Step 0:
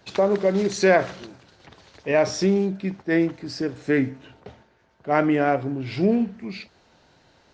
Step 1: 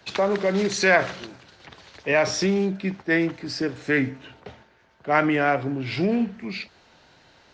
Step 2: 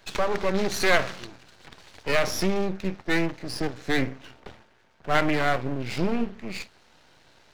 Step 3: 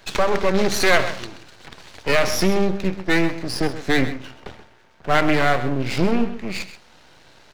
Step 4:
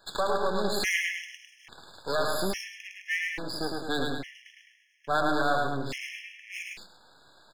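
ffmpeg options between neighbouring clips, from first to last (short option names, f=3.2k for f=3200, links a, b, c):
-filter_complex "[0:a]equalizer=f=2.4k:t=o:w=2.7:g=5.5,acrossover=split=160|750|1500[a][b][c][d];[b]alimiter=limit=-18dB:level=0:latency=1[e];[a][e][c][d]amix=inputs=4:normalize=0"
-af "aeval=exprs='max(val(0),0)':c=same,volume=1.5dB"
-filter_complex "[0:a]asplit=2[a][b];[b]alimiter=limit=-13.5dB:level=0:latency=1:release=241,volume=-2.5dB[c];[a][c]amix=inputs=2:normalize=0,aecho=1:1:130:0.224,volume=1.5dB"
-af "lowshelf=f=380:g=-10,aecho=1:1:107.9|209.9:0.708|0.355,afftfilt=real='re*gt(sin(2*PI*0.59*pts/sr)*(1-2*mod(floor(b*sr/1024/1700),2)),0)':imag='im*gt(sin(2*PI*0.59*pts/sr)*(1-2*mod(floor(b*sr/1024/1700),2)),0)':win_size=1024:overlap=0.75,volume=-6dB"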